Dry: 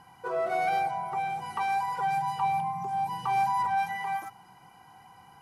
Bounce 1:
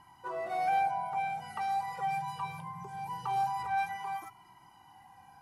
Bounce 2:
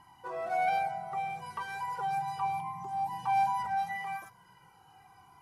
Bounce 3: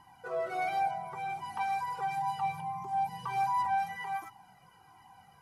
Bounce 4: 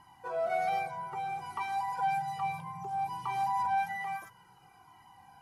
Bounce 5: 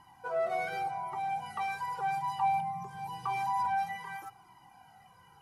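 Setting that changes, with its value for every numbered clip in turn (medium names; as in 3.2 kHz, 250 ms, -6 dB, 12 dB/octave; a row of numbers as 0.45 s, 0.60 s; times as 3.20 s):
Shepard-style flanger, rate: 0.22 Hz, 0.36 Hz, 1.4 Hz, 0.6 Hz, 0.88 Hz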